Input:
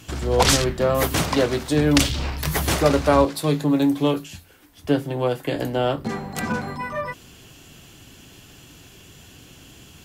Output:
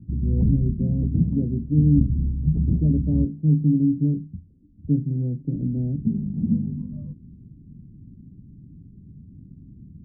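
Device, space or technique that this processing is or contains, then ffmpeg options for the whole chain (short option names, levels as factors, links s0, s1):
the neighbour's flat through the wall: -af "lowpass=f=230:w=0.5412,lowpass=f=230:w=1.3066,equalizer=f=200:t=o:w=0.95:g=6,volume=1.5"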